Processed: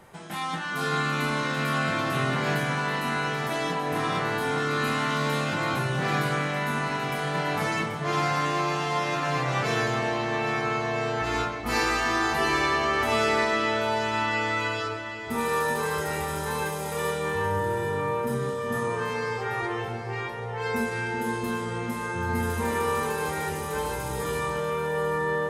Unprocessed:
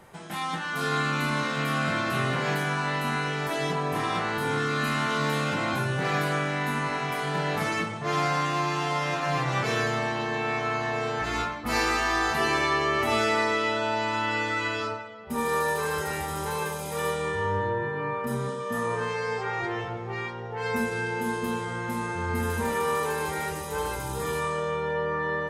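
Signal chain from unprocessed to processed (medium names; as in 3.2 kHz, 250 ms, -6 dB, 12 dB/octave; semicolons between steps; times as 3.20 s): echo whose repeats swap between lows and highs 392 ms, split 820 Hz, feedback 65%, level -7 dB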